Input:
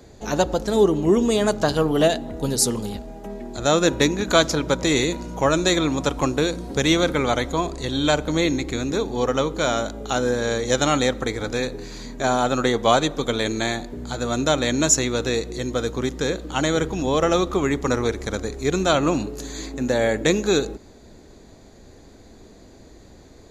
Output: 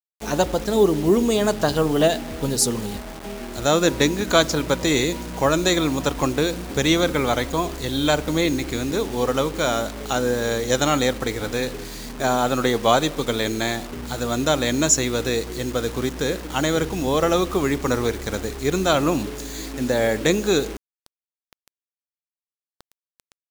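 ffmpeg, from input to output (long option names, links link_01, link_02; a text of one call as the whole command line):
ffmpeg -i in.wav -af "acrusher=bits=5:mix=0:aa=0.000001" out.wav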